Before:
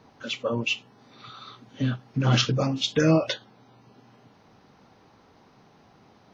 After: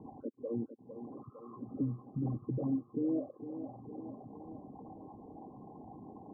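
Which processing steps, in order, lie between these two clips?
resonances exaggerated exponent 3; compression 2:1, threshold -45 dBFS, peak gain reduction 15.5 dB; peak limiter -33 dBFS, peak gain reduction 7.5 dB; rippled Chebyshev low-pass 1.1 kHz, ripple 9 dB; on a send: thinning echo 455 ms, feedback 72%, high-pass 200 Hz, level -9.5 dB; on the sum: trim +9.5 dB

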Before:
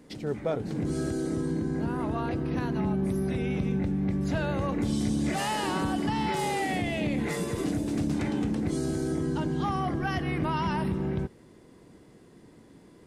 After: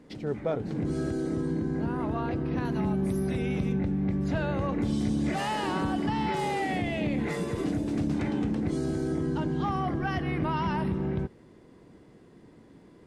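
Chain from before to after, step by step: treble shelf 6 kHz -12 dB, from 2.65 s +2 dB, from 3.73 s -11.5 dB

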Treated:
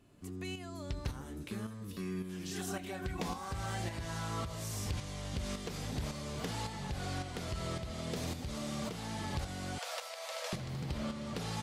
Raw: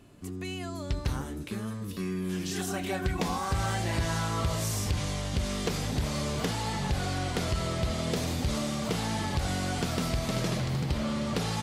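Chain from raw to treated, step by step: 9.78–10.53 s: Chebyshev high-pass 490 Hz, order 8; compression 2:1, threshold -32 dBFS, peak gain reduction 5 dB; tremolo saw up 1.8 Hz, depth 55%; trim -3 dB

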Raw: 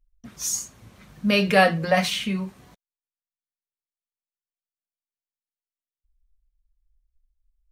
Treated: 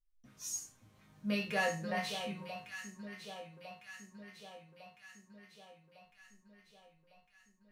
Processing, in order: chord resonator G#2 major, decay 0.32 s; echo whose repeats swap between lows and highs 577 ms, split 1.2 kHz, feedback 74%, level -8 dB; trim -1.5 dB

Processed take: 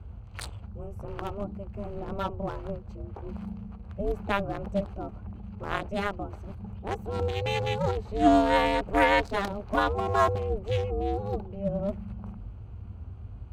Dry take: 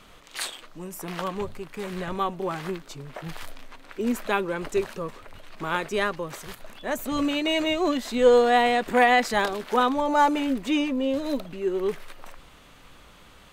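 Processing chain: local Wiener filter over 25 samples; ring modulator 200 Hz; band noise 40–110 Hz -41 dBFS

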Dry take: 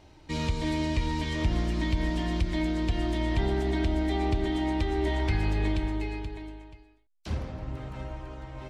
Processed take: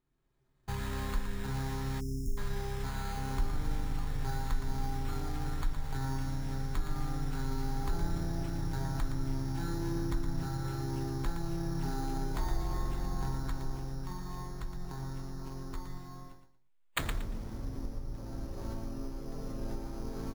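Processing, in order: recorder AGC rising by 31 dB/s; speed mistake 78 rpm record played at 33 rpm; gate with hold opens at -31 dBFS; sample-and-hold 8×; feedback delay 116 ms, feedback 24%, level -8 dB; spectral selection erased 2.00–2.38 s, 430–5000 Hz; trim -5.5 dB

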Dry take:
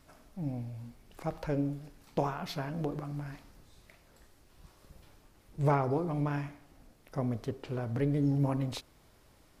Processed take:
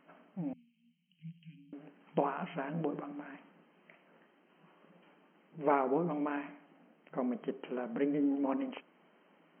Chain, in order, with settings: FFT band-pass 160–3200 Hz; 0.53–1.73 s: inverse Chebyshev band-stop 390–1300 Hz, stop band 60 dB

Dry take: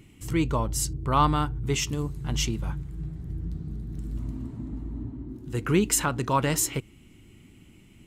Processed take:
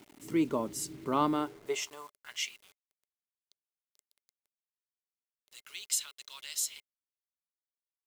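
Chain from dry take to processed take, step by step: high-pass sweep 250 Hz -> 3.8 kHz, 1.27–2.74 s; bit crusher 8-bit; small resonant body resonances 410/590/2100 Hz, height 7 dB; trim -8.5 dB

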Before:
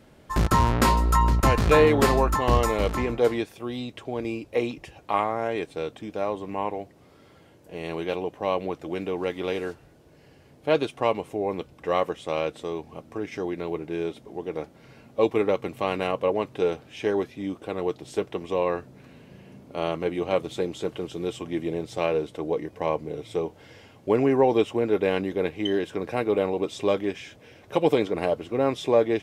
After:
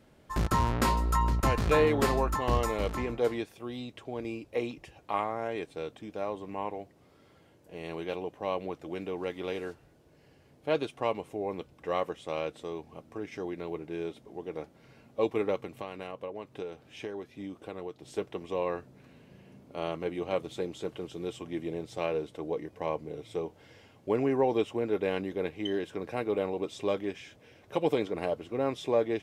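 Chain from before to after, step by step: 15.64–18.06 s: compression 6:1, threshold -29 dBFS, peak gain reduction 10.5 dB; trim -6.5 dB

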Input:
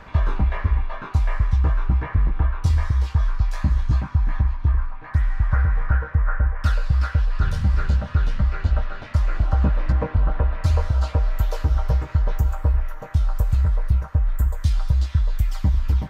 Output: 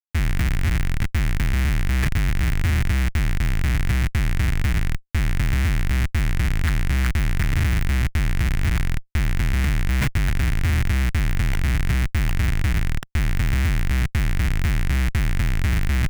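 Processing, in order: Schmitt trigger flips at -26.5 dBFS; ten-band graphic EQ 125 Hz +4 dB, 250 Hz -3 dB, 500 Hz -12 dB, 1 kHz -6 dB, 2 kHz +10 dB, 4 kHz -3 dB

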